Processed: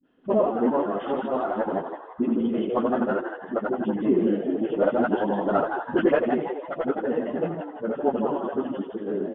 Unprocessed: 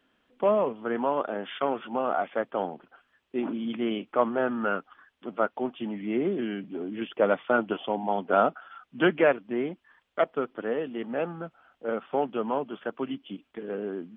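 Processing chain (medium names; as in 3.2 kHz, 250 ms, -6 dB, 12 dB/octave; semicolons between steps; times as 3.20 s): time reversed locally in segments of 81 ms; phase dispersion highs, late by 68 ms, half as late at 360 Hz; frequency-shifting echo 249 ms, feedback 42%, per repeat +130 Hz, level -6.5 dB; in parallel at -10 dB: one-sided clip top -28 dBFS, bottom -12 dBFS; on the sum: peaking EQ 270 Hz +9.5 dB 1.8 oct; band-stop 2.3 kHz, Q 7.3; plain phase-vocoder stretch 0.66×; distance through air 220 m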